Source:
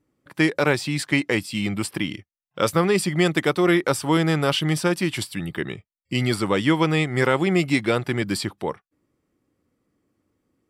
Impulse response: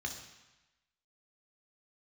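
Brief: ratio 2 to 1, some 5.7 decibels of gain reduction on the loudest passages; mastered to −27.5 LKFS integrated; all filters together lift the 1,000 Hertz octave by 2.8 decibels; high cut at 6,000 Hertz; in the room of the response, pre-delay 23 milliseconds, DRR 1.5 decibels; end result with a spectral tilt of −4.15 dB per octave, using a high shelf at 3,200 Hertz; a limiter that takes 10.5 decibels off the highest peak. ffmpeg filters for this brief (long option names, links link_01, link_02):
-filter_complex "[0:a]lowpass=6000,equalizer=frequency=1000:width_type=o:gain=3,highshelf=frequency=3200:gain=5,acompressor=threshold=-24dB:ratio=2,alimiter=limit=-17.5dB:level=0:latency=1,asplit=2[link_01][link_02];[1:a]atrim=start_sample=2205,adelay=23[link_03];[link_02][link_03]afir=irnorm=-1:irlink=0,volume=-2.5dB[link_04];[link_01][link_04]amix=inputs=2:normalize=0,volume=-0.5dB"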